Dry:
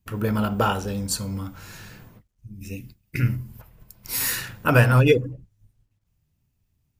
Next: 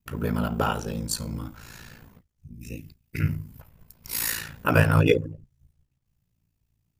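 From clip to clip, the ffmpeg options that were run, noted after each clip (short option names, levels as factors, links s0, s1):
-af "aeval=exprs='val(0)*sin(2*PI*28*n/s)':c=same"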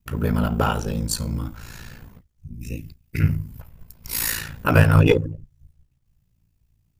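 -filter_complex "[0:a]lowshelf=f=88:g=9,asplit=2[s0][s1];[s1]aeval=exprs='clip(val(0),-1,0.0891)':c=same,volume=0.631[s2];[s0][s2]amix=inputs=2:normalize=0,volume=0.891"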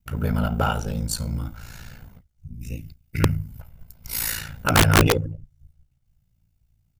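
-af "aecho=1:1:1.4:0.35,aeval=exprs='(mod(1.88*val(0)+1,2)-1)/1.88':c=same,volume=0.75"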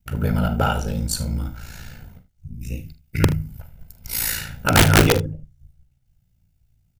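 -filter_complex "[0:a]bandreject=f=1100:w=5.6,asplit=2[s0][s1];[s1]aecho=0:1:44|77:0.237|0.15[s2];[s0][s2]amix=inputs=2:normalize=0,volume=1.33"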